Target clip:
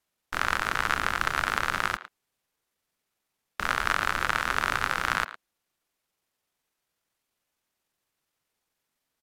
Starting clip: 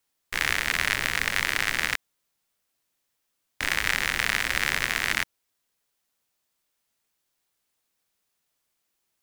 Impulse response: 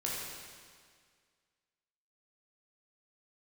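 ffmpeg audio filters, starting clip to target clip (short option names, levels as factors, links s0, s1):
-filter_complex "[0:a]highshelf=f=4500:g=-6,asetrate=32097,aresample=44100,atempo=1.37395,asplit=2[s0][s1];[s1]adelay=110,highpass=300,lowpass=3400,asoftclip=type=hard:threshold=0.188,volume=0.224[s2];[s0][s2]amix=inputs=2:normalize=0"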